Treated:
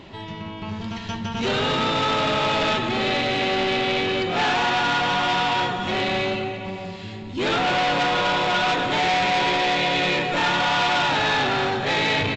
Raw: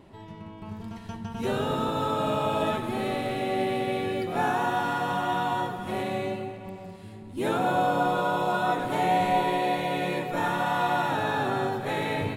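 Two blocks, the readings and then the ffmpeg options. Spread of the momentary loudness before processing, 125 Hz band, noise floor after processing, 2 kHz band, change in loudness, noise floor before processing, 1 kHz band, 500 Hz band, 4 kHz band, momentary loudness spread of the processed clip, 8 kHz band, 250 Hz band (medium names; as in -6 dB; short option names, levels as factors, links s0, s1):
15 LU, +3.5 dB, -35 dBFS, +10.0 dB, +6.0 dB, -43 dBFS, +4.0 dB, +3.5 dB, +15.0 dB, 12 LU, +8.5 dB, +3.0 dB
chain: -af "aresample=16000,asoftclip=type=tanh:threshold=0.0355,aresample=44100,equalizer=f=3300:w=0.67:g=10.5,volume=2.51"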